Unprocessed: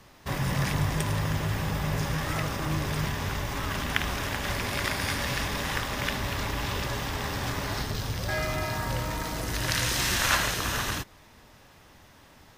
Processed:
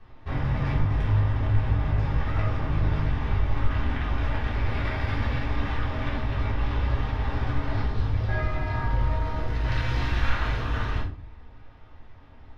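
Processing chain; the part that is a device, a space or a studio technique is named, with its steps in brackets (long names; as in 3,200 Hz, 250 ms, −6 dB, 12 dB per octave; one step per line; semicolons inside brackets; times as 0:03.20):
high-frequency loss of the air 320 metres
car stereo with a boomy subwoofer (low shelf with overshoot 100 Hz +8 dB, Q 1.5; brickwall limiter −18.5 dBFS, peak gain reduction 9 dB)
rectangular room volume 260 cubic metres, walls furnished, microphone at 3.6 metres
level −6.5 dB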